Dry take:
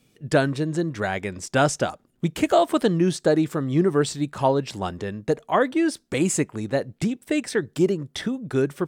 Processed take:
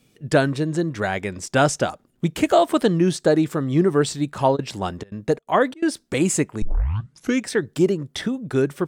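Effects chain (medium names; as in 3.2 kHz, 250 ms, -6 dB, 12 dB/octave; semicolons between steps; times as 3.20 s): 4.55–5.84 s: trance gate "x.x.xxxxx.xxx.xx" 170 bpm -24 dB; 6.62 s: tape start 0.86 s; trim +2 dB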